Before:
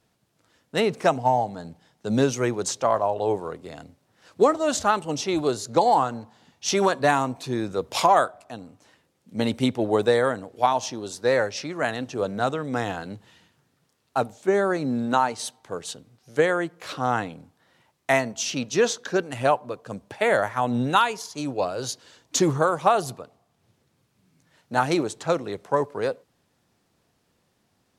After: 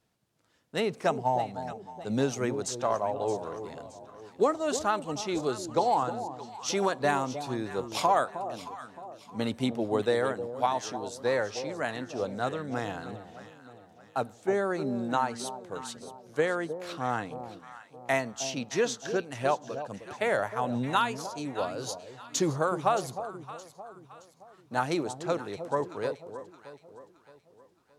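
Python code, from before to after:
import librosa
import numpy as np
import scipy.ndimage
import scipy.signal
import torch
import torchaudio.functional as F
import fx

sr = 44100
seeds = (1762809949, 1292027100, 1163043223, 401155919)

y = fx.echo_alternate(x, sr, ms=310, hz=880.0, feedback_pct=62, wet_db=-9.5)
y = y * librosa.db_to_amplitude(-6.5)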